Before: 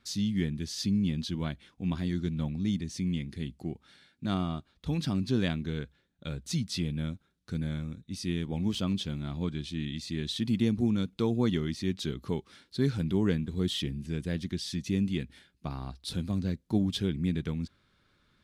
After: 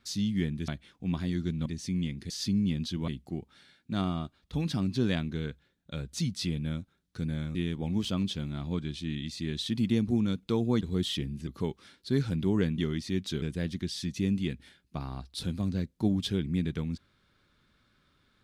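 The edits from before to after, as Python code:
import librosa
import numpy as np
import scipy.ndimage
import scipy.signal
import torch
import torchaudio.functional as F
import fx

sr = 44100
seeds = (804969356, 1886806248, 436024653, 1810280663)

y = fx.edit(x, sr, fx.move(start_s=0.68, length_s=0.78, to_s=3.41),
    fx.cut(start_s=2.44, length_s=0.33),
    fx.cut(start_s=7.88, length_s=0.37),
    fx.swap(start_s=11.51, length_s=0.64, other_s=13.46, other_length_s=0.66), tone=tone)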